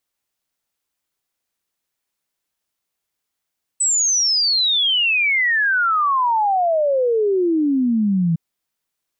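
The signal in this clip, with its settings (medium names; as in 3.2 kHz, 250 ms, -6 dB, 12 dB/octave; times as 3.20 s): log sweep 8.1 kHz -> 160 Hz 4.56 s -14.5 dBFS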